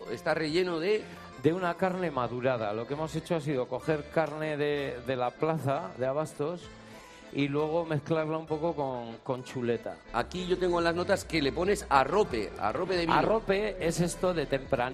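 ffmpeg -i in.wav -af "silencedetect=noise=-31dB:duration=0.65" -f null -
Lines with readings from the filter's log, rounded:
silence_start: 6.55
silence_end: 7.33 | silence_duration: 0.78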